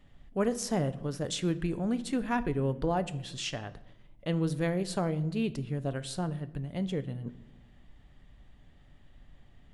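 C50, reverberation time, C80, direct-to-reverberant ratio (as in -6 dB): 17.0 dB, 1.0 s, 20.0 dB, 12.0 dB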